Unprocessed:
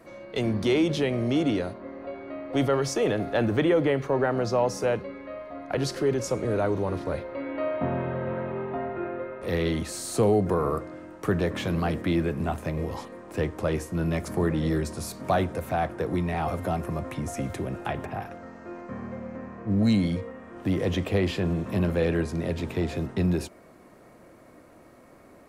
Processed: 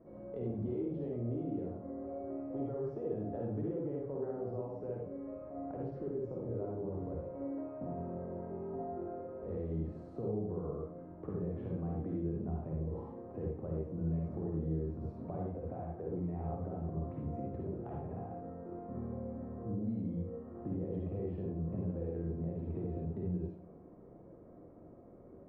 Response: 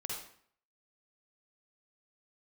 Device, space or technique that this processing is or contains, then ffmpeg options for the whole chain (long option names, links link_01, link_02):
television next door: -filter_complex "[0:a]acompressor=threshold=-35dB:ratio=4,lowpass=510[link_01];[1:a]atrim=start_sample=2205[link_02];[link_01][link_02]afir=irnorm=-1:irlink=0,volume=-1dB"